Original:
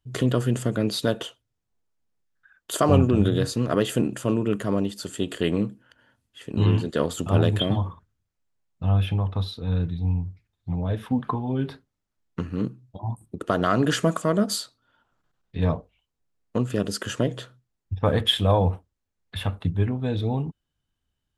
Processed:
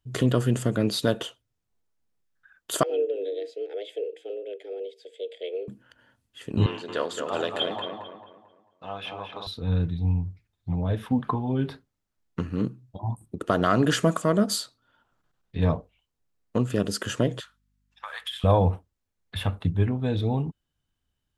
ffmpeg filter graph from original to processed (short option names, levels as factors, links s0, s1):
-filter_complex "[0:a]asettb=1/sr,asplit=3[s0][s1][s2];[s0]atrim=end=2.834[s3];[s1]atrim=start=2.83:end=5.68,asetpts=PTS-STARTPTS,afade=t=in:d=0.004:c=qsin,afade=t=out:st=2.846:d=0.004:c=qsin,asplit=3[s4][s5][s6];[s4]bandpass=f=270:t=q:w=8,volume=1[s7];[s5]bandpass=f=2290:t=q:w=8,volume=0.501[s8];[s6]bandpass=f=3010:t=q:w=8,volume=0.355[s9];[s7][s8][s9]amix=inputs=3:normalize=0,afreqshift=190[s10];[s2]atrim=start=5.676[s11];[s3][s10]acrossfade=d=0.004:c1=hsin:c2=qsin[s12];[s12][s11]acrossfade=d=0.004:c1=qsin:c2=hsin,asettb=1/sr,asplit=3[s13][s14][s15];[s13]atrim=end=6.664[s16];[s14]atrim=start=6.66:end=9.47,asetpts=PTS-STARTPTS,afade=t=in:d=0.004:c=qsin,afade=t=out:st=2.806:d=0.004:c=qsin,highpass=540,lowpass=6500,asplit=2[s17][s18];[s18]adelay=222,lowpass=f=2700:p=1,volume=0.596,asplit=2[s19][s20];[s20]adelay=222,lowpass=f=2700:p=1,volume=0.39,asplit=2[s21][s22];[s22]adelay=222,lowpass=f=2700:p=1,volume=0.39,asplit=2[s23][s24];[s24]adelay=222,lowpass=f=2700:p=1,volume=0.39,asplit=2[s25][s26];[s26]adelay=222,lowpass=f=2700:p=1,volume=0.39[s27];[s17][s19][s21][s23][s25][s27]amix=inputs=6:normalize=0,atrim=end_sample=123921[s28];[s15]atrim=start=9.466[s29];[s16][s28]acrossfade=d=0.004:c1=hsin:c2=qsin[s30];[s30][s29]acrossfade=d=0.004:c1=qsin:c2=hsin,asettb=1/sr,asplit=3[s31][s32][s33];[s31]atrim=end=17.404[s34];[s32]atrim=start=17.4:end=18.44,asetpts=PTS-STARTPTS,afade=t=in:d=0.004:c=qsin,afade=t=out:st=1.036:d=0.004:c=qsin,highpass=f=1100:w=0.5412,highpass=f=1100:w=1.3066,acompressor=threshold=0.0282:ratio=6:attack=3.2:release=140:knee=1:detection=peak,aeval=exprs='val(0)+0.000282*(sin(2*PI*50*n/s)+sin(2*PI*2*50*n/s)/2+sin(2*PI*3*50*n/s)/3+sin(2*PI*4*50*n/s)/4+sin(2*PI*5*50*n/s)/5)':c=same[s35];[s33]atrim=start=18.436[s36];[s34][s35]acrossfade=d=0.004:c1=hsin:c2=qsin[s37];[s37][s36]acrossfade=d=0.004:c1=qsin:c2=hsin"